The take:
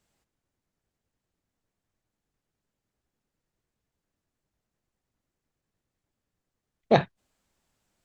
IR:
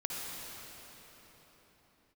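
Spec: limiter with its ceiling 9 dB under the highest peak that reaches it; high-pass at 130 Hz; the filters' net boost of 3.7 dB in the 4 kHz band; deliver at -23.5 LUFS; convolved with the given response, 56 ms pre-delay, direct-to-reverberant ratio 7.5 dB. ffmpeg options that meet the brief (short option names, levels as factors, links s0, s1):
-filter_complex "[0:a]highpass=130,equalizer=f=4000:t=o:g=4,alimiter=limit=0.251:level=0:latency=1,asplit=2[s0][s1];[1:a]atrim=start_sample=2205,adelay=56[s2];[s1][s2]afir=irnorm=-1:irlink=0,volume=0.282[s3];[s0][s3]amix=inputs=2:normalize=0,volume=2.51"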